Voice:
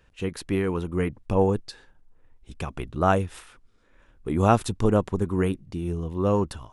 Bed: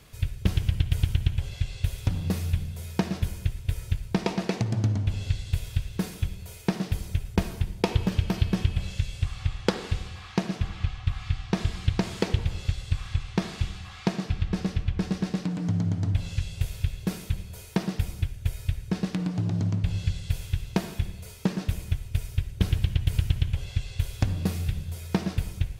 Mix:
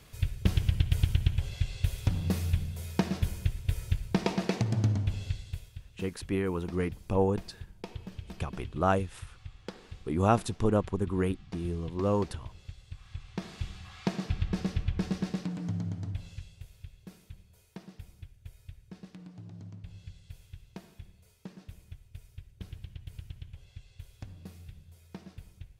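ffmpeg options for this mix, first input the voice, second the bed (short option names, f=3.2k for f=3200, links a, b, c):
-filter_complex "[0:a]adelay=5800,volume=-5dB[a];[1:a]volume=12dB,afade=t=out:st=4.9:d=0.82:silence=0.16788,afade=t=in:st=12.99:d=1.29:silence=0.199526,afade=t=out:st=15.08:d=1.55:silence=0.158489[b];[a][b]amix=inputs=2:normalize=0"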